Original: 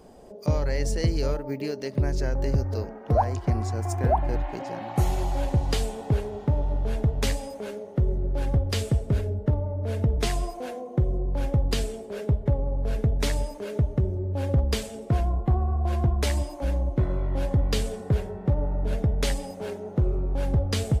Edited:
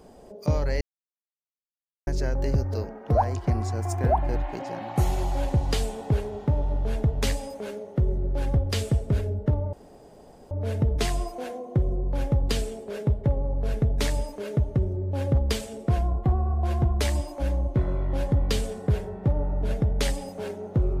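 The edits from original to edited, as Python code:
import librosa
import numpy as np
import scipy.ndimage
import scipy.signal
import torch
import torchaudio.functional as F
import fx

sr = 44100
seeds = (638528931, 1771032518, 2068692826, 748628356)

y = fx.edit(x, sr, fx.silence(start_s=0.81, length_s=1.26),
    fx.insert_room_tone(at_s=9.73, length_s=0.78), tone=tone)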